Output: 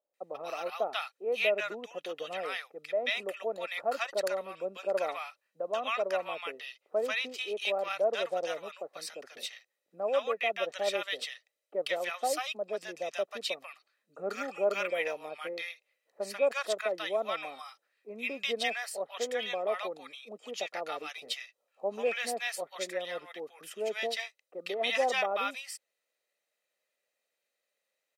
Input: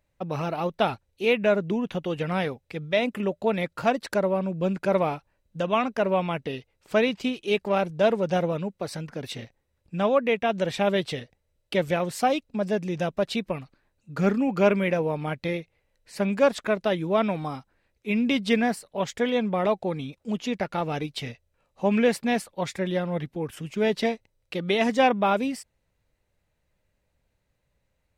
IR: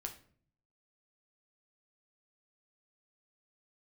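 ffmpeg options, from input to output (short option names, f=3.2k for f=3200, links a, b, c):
-filter_complex "[0:a]highpass=f=330:w=0.5412,highpass=f=330:w=1.3066,tiltshelf=f=1.4k:g=-4,aecho=1:1:1.6:0.42,acrossover=split=940[a][b];[b]adelay=140[c];[a][c]amix=inputs=2:normalize=0,volume=-5dB"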